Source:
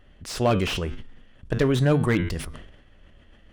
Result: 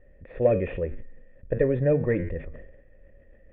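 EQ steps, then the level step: vocal tract filter e; tilt -2.5 dB/oct; +7.5 dB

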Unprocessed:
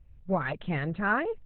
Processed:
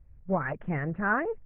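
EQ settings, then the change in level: steep low-pass 2100 Hz 36 dB/oct; 0.0 dB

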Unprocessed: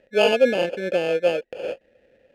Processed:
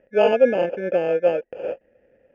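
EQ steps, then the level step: dynamic EQ 740 Hz, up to +3 dB, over -31 dBFS, Q 1.1; running mean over 11 samples; 0.0 dB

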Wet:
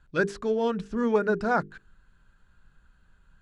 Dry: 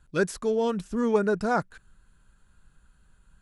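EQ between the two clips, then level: LPF 4900 Hz 12 dB/oct; bell 1600 Hz +3.5 dB 0.41 oct; notches 50/100/150/200/250/300/350/400/450 Hz; 0.0 dB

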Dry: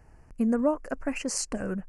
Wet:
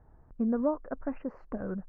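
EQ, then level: LPF 1400 Hz 24 dB/oct; -3.5 dB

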